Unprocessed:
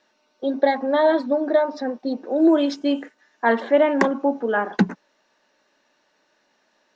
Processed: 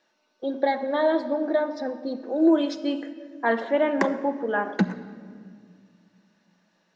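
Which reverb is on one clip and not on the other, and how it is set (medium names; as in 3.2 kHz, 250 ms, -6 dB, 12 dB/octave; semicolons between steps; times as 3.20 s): simulated room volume 3600 m³, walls mixed, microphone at 0.73 m; trim -4.5 dB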